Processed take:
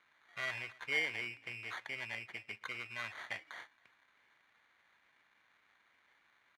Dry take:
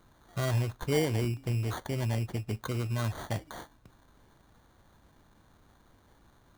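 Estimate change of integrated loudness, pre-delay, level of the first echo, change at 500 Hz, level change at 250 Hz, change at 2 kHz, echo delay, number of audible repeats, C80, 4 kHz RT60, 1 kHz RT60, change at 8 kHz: −8.0 dB, no reverb audible, −23.5 dB, −16.5 dB, −22.0 dB, +4.5 dB, 273 ms, 1, no reverb audible, no reverb audible, no reverb audible, −14.0 dB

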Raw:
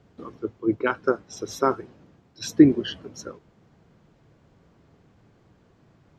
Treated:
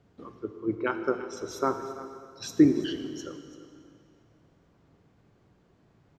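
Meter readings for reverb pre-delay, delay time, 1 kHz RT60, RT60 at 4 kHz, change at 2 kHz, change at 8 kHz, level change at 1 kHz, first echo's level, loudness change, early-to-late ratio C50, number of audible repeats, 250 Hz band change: 5 ms, 337 ms, 2.3 s, 2.2 s, −5.0 dB, −4.5 dB, −4.5 dB, −15.5 dB, −5.5 dB, 8.0 dB, 1, −4.5 dB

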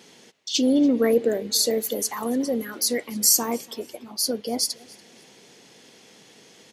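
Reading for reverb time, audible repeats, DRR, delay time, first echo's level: no reverb audible, 2, no reverb audible, 287 ms, −24.0 dB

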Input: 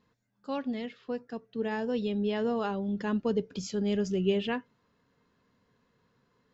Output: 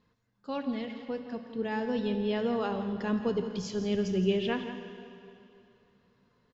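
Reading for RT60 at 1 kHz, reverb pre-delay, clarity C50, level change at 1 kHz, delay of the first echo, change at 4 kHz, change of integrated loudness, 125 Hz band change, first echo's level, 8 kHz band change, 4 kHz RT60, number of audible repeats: 2.7 s, 7 ms, 7.0 dB, +0.5 dB, 168 ms, +1.0 dB, 0.0 dB, +0.5 dB, −12.0 dB, can't be measured, 2.5 s, 1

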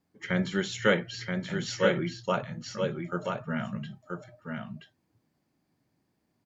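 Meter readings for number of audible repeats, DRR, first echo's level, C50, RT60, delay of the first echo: 1, no reverb audible, −4.5 dB, no reverb audible, no reverb audible, 978 ms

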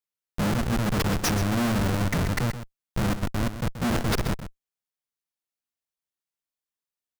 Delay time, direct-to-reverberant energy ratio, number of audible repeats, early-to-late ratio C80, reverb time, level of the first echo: 130 ms, no reverb audible, 1, no reverb audible, no reverb audible, −11.0 dB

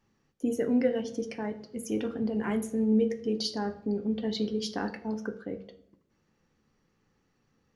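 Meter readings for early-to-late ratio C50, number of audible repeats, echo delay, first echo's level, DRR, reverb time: 15.0 dB, no echo audible, no echo audible, no echo audible, 10.0 dB, 0.75 s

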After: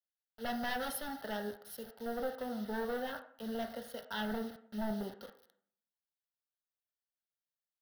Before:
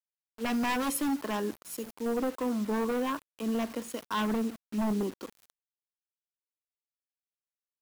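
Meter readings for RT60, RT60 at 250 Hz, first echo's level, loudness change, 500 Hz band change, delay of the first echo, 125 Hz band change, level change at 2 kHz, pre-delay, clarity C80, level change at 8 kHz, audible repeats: 0.60 s, 0.80 s, no echo audible, −8.0 dB, −6.0 dB, no echo audible, −8.5 dB, −4.0 dB, 6 ms, 14.5 dB, −10.0 dB, no echo audible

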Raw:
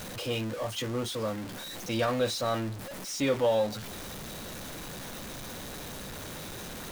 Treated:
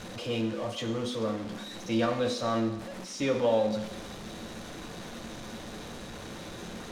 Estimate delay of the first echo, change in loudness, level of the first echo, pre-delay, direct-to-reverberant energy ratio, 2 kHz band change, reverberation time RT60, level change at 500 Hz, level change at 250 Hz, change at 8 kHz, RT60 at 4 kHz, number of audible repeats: no echo audible, 0.0 dB, no echo audible, 3 ms, 5.5 dB, −1.5 dB, 1.0 s, +0.5 dB, +3.0 dB, −5.0 dB, 1.1 s, no echo audible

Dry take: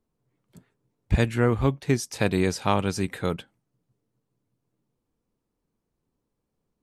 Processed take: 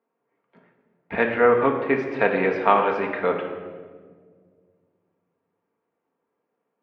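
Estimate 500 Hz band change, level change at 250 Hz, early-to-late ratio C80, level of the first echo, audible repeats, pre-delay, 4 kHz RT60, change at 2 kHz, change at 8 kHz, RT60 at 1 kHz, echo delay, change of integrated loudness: +7.0 dB, −1.5 dB, 8.0 dB, no echo audible, no echo audible, 4 ms, 1.1 s, +7.5 dB, below −25 dB, 1.4 s, no echo audible, +3.5 dB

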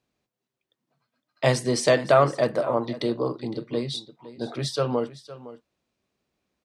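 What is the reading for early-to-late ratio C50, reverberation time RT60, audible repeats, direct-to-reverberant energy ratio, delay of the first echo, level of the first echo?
no reverb audible, no reverb audible, 1, no reverb audible, 511 ms, −16.5 dB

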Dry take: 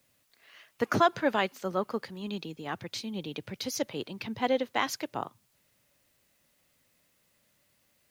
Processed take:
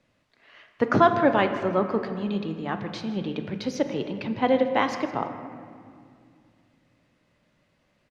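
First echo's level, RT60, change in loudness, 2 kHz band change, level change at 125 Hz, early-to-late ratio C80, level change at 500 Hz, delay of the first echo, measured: −17.0 dB, 2.3 s, +6.5 dB, +4.0 dB, +8.5 dB, 9.0 dB, +7.0 dB, 161 ms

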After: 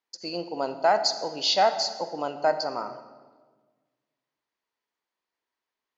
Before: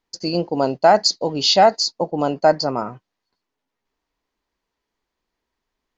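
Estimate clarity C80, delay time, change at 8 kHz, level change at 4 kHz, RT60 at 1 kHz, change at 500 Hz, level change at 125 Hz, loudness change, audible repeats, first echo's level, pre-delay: 12.0 dB, no echo audible, can't be measured, −7.0 dB, 1.3 s, −8.5 dB, −18.0 dB, −8.0 dB, no echo audible, no echo audible, 38 ms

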